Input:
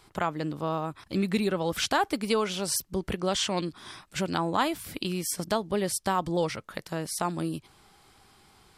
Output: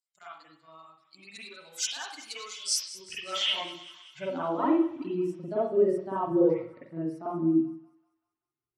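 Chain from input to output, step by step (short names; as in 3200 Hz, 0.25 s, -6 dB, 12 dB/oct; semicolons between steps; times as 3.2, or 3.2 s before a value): per-bin expansion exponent 2; LPF 11000 Hz 12 dB/oct; high shelf 3600 Hz +9.5 dB; soft clip -20.5 dBFS, distortion -17 dB; band-pass sweep 7300 Hz -> 340 Hz, 2.51–4.75; thinning echo 0.192 s, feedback 64%, high-pass 1100 Hz, level -16 dB; reverb RT60 0.50 s, pre-delay 42 ms, DRR -9 dB; gain +5 dB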